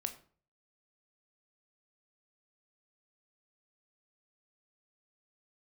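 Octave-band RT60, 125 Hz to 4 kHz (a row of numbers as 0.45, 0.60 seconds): 0.60, 0.50, 0.45, 0.45, 0.35, 0.30 seconds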